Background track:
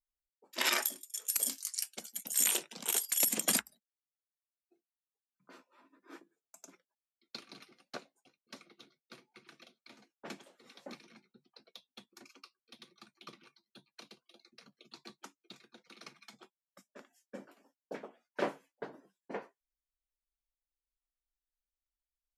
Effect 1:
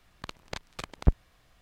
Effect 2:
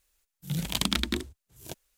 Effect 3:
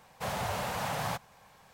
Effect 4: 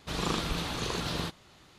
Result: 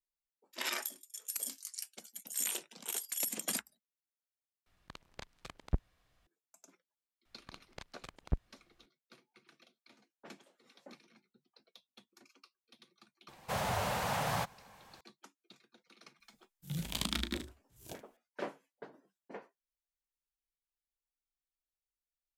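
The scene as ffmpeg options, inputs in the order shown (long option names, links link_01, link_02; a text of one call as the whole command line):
ffmpeg -i bed.wav -i cue0.wav -i cue1.wav -i cue2.wav -filter_complex "[1:a]asplit=2[link_01][link_02];[0:a]volume=-6.5dB[link_03];[2:a]aecho=1:1:18|35|76:0.133|0.299|0.188[link_04];[link_03]asplit=2[link_05][link_06];[link_05]atrim=end=4.664[link_07];[link_01]atrim=end=1.61,asetpts=PTS-STARTPTS,volume=-10.5dB[link_08];[link_06]atrim=start=6.266[link_09];[link_02]atrim=end=1.61,asetpts=PTS-STARTPTS,volume=-11.5dB,afade=type=in:duration=0.004:curve=hsin,afade=type=out:start_time=1.606:duration=0.004:curve=hsin,adelay=7250[link_10];[3:a]atrim=end=1.73,asetpts=PTS-STARTPTS,volume=-0.5dB,afade=type=in:duration=0.004:curve=hsin,afade=type=out:start_time=1.726:duration=0.004:curve=hsin,adelay=13280[link_11];[link_04]atrim=end=1.97,asetpts=PTS-STARTPTS,volume=-8.5dB,afade=type=in:duration=0.004:curve=hsin,afade=type=out:start_time=1.966:duration=0.004:curve=hsin,adelay=714420S[link_12];[link_07][link_08]acrossfade=duration=0.004:curve1=hsin:curve2=hsin[link_13];[link_13][link_09]acrossfade=duration=0.004:curve1=hsin:curve2=hsin[link_14];[link_14][link_10][link_11][link_12]amix=inputs=4:normalize=0" out.wav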